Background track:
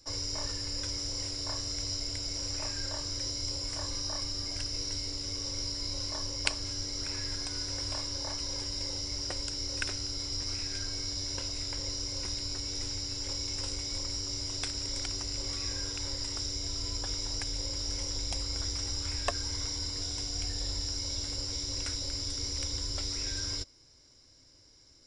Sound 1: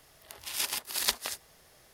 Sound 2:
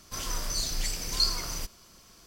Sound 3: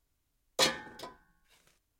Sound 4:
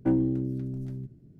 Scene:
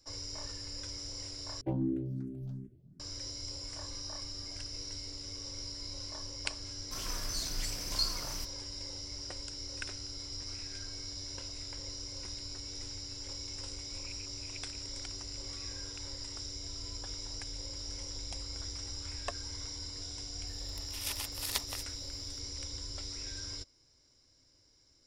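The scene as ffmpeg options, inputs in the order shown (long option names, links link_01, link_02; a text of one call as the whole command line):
ffmpeg -i bed.wav -i cue0.wav -i cue1.wav -i cue2.wav -i cue3.wav -filter_complex "[1:a]asplit=2[link_01][link_02];[0:a]volume=-7dB[link_03];[4:a]asplit=2[link_04][link_05];[link_05]afreqshift=2.7[link_06];[link_04][link_06]amix=inputs=2:normalize=1[link_07];[2:a]agate=range=-33dB:threshold=-43dB:ratio=3:release=100:detection=peak[link_08];[link_01]asuperpass=centerf=2400:order=4:qfactor=5.7[link_09];[link_02]bandreject=frequency=1600:width=9.9[link_10];[link_03]asplit=2[link_11][link_12];[link_11]atrim=end=1.614[link_13];[link_07]atrim=end=1.39,asetpts=PTS-STARTPTS,volume=-3.5dB[link_14];[link_12]atrim=start=2.996[link_15];[link_08]atrim=end=2.26,asetpts=PTS-STARTPTS,volume=-6.5dB,afade=type=in:duration=0.004:curve=hsin,afade=type=out:start_time=2.256:duration=0.004:curve=hsin,adelay=6790[link_16];[link_09]atrim=end=1.93,asetpts=PTS-STARTPTS,volume=-10dB,afade=type=in:duration=0.004:curve=hsin,afade=type=out:start_time=1.926:duration=0.004:curve=hsin,adelay=13470[link_17];[link_10]atrim=end=1.93,asetpts=PTS-STARTPTS,volume=-6.5dB,afade=type=in:duration=0.004:curve=hsin,afade=type=out:start_time=1.926:duration=0.004:curve=hsin,adelay=20470[link_18];[link_13][link_14]acrossfade=duration=0.004:curve1=hsin:curve2=hsin[link_19];[link_19][link_15]acrossfade=duration=0.004:curve1=hsin:curve2=hsin[link_20];[link_20][link_16][link_17][link_18]amix=inputs=4:normalize=0" out.wav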